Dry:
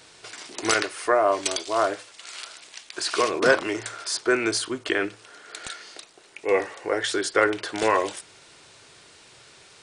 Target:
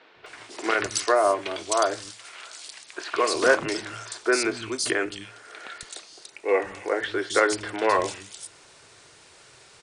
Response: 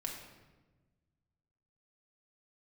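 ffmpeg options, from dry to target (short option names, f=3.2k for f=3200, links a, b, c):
-filter_complex "[0:a]acrossover=split=220|3300[a][b][c];[a]adelay=160[d];[c]adelay=260[e];[d][b][e]amix=inputs=3:normalize=0"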